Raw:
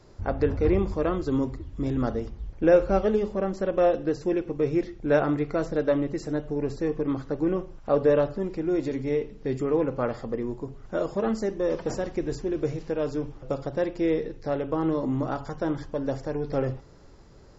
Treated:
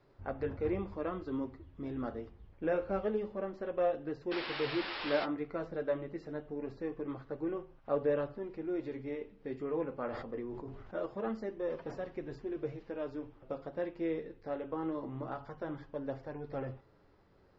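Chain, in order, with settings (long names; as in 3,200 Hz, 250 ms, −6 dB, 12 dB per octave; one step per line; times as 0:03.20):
0:04.31–0:05.25: sound drawn into the spectrogram noise 240–5,500 Hz −29 dBFS
spectral tilt +2 dB per octave
flanger 0.25 Hz, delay 7 ms, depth 5.3 ms, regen −39%
high-frequency loss of the air 360 metres
0:10.06–0:11.06: level that may fall only so fast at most 39 dB per second
level −4 dB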